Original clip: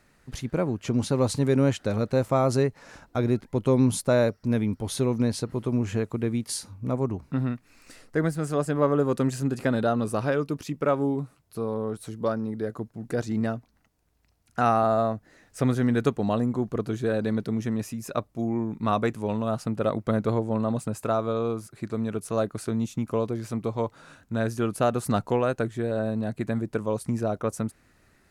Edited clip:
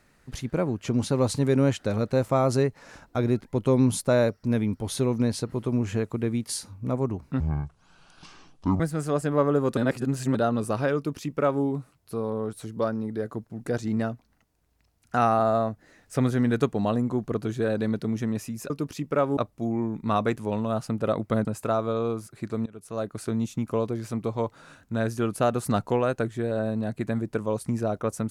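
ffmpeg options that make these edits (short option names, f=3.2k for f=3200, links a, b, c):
-filter_complex "[0:a]asplit=9[a][b][c][d][e][f][g][h][i];[a]atrim=end=7.404[j];[b]atrim=start=7.4:end=8.24,asetpts=PTS-STARTPTS,asetrate=26460,aresample=44100[k];[c]atrim=start=8.236:end=9.212[l];[d]atrim=start=9.208:end=9.792,asetpts=PTS-STARTPTS,areverse[m];[e]atrim=start=9.788:end=18.142[n];[f]atrim=start=10.398:end=11.072[o];[g]atrim=start=18.138:end=20.222[p];[h]atrim=start=20.848:end=22.06,asetpts=PTS-STARTPTS,afade=t=out:st=1.208:d=0.004:c=hsin:silence=0.0841395[q];[i]atrim=start=22.06,asetpts=PTS-STARTPTS,afade=t=in:d=0.64:silence=0.0841395[r];[j][k]acrossfade=d=0.004:c1=hsin:c2=hsin[s];[s][l]acrossfade=d=0.004:c1=hsin:c2=hsin[t];[t][m]acrossfade=d=0.004:c1=hsin:c2=hsin[u];[u][n]acrossfade=d=0.004:c1=hsin:c2=hsin[v];[v][o]acrossfade=d=0.004:c1=hsin:c2=hsin[w];[w][p]acrossfade=d=0.004:c1=hsin:c2=hsin[x];[q][r]concat=n=2:v=0:a=1[y];[x][y]acrossfade=d=0.004:c1=hsin:c2=hsin"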